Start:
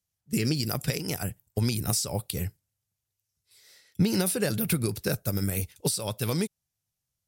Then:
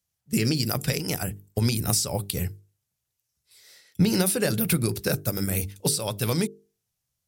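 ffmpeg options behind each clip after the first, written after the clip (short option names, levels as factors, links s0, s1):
-af "bandreject=f=50:t=h:w=6,bandreject=f=100:t=h:w=6,bandreject=f=150:t=h:w=6,bandreject=f=200:t=h:w=6,bandreject=f=250:t=h:w=6,bandreject=f=300:t=h:w=6,bandreject=f=350:t=h:w=6,bandreject=f=400:t=h:w=6,bandreject=f=450:t=h:w=6,volume=1.5"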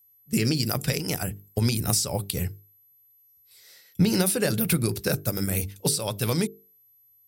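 -af "aeval=exprs='val(0)+0.00141*sin(2*PI*12000*n/s)':c=same"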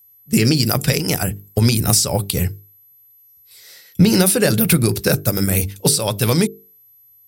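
-af "acontrast=84,volume=1.26"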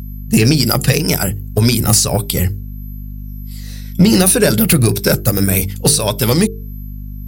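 -af "afftfilt=real='re*pow(10,7/40*sin(2*PI*(1.6*log(max(b,1)*sr/1024/100)/log(2)-(-1.8)*(pts-256)/sr)))':imag='im*pow(10,7/40*sin(2*PI*(1.6*log(max(b,1)*sr/1024/100)/log(2)-(-1.8)*(pts-256)/sr)))':win_size=1024:overlap=0.75,aeval=exprs='val(0)+0.0316*(sin(2*PI*50*n/s)+sin(2*PI*2*50*n/s)/2+sin(2*PI*3*50*n/s)/3+sin(2*PI*4*50*n/s)/4+sin(2*PI*5*50*n/s)/5)':c=same,acontrast=23,volume=0.891"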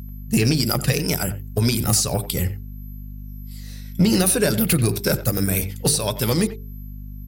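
-filter_complex "[0:a]asplit=2[s0][s1];[s1]adelay=90,highpass=300,lowpass=3400,asoftclip=type=hard:threshold=0.299,volume=0.224[s2];[s0][s2]amix=inputs=2:normalize=0,volume=0.447"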